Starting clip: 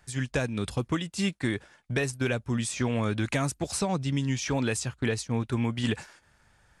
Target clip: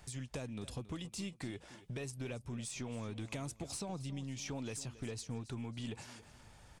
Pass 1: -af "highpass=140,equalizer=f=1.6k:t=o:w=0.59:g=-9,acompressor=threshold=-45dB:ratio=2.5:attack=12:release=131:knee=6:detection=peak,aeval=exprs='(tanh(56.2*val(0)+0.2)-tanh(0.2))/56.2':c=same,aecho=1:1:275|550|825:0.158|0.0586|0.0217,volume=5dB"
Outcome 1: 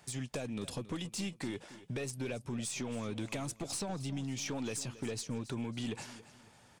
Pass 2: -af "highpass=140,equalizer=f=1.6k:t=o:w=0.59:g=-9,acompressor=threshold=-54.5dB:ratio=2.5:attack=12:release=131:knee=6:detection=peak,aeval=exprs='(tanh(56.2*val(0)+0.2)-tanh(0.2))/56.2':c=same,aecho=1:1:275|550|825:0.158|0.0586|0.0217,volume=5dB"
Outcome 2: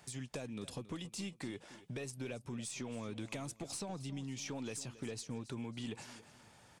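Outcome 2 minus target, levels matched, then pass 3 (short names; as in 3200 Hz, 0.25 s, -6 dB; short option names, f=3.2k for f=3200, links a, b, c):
125 Hz band -2.5 dB
-af "equalizer=f=1.6k:t=o:w=0.59:g=-9,acompressor=threshold=-54.5dB:ratio=2.5:attack=12:release=131:knee=6:detection=peak,aeval=exprs='(tanh(56.2*val(0)+0.2)-tanh(0.2))/56.2':c=same,aecho=1:1:275|550|825:0.158|0.0586|0.0217,volume=5dB"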